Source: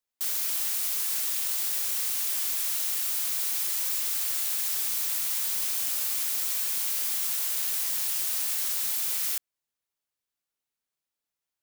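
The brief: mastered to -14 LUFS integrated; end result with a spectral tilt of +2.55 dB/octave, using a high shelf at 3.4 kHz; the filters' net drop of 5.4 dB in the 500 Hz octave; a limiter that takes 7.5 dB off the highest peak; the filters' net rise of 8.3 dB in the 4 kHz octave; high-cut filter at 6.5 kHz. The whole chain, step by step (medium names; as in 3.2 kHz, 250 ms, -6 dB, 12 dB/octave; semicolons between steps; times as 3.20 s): low-pass 6.5 kHz; peaking EQ 500 Hz -7.5 dB; treble shelf 3.4 kHz +6.5 dB; peaking EQ 4 kHz +6.5 dB; trim +17 dB; peak limiter -7.5 dBFS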